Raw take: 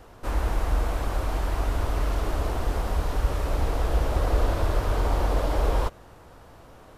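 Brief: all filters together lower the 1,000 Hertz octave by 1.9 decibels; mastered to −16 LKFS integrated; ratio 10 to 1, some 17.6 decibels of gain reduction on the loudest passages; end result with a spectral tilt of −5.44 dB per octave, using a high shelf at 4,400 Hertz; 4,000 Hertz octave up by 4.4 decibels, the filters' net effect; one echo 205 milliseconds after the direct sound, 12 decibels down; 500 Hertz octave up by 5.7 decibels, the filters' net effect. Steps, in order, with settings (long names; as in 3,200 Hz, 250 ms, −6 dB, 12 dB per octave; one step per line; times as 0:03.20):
parametric band 500 Hz +8.5 dB
parametric band 1,000 Hz −6.5 dB
parametric band 4,000 Hz +4 dB
high-shelf EQ 4,400 Hz +3.5 dB
downward compressor 10 to 1, threshold −35 dBFS
single-tap delay 205 ms −12 dB
level +25.5 dB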